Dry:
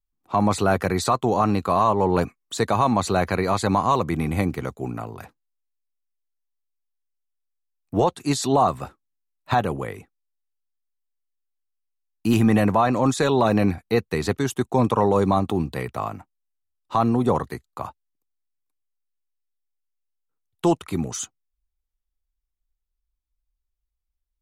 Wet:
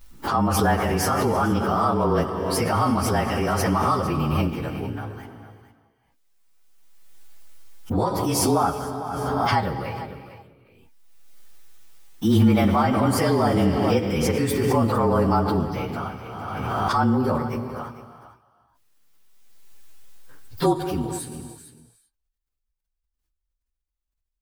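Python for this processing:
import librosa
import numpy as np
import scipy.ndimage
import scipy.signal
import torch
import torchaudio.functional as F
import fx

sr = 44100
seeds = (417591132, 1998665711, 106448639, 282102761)

y = fx.partial_stretch(x, sr, pct=109)
y = y + 10.0 ** (-13.5 / 20.0) * np.pad(y, (int(453 * sr / 1000.0), 0))[:len(y)]
y = fx.rev_gated(y, sr, seeds[0], gate_ms=410, shape='flat', drr_db=8.0)
y = fx.pre_swell(y, sr, db_per_s=24.0)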